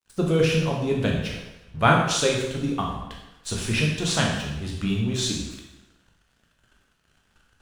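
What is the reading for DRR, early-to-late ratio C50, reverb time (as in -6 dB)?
-1.5 dB, 2.5 dB, 0.95 s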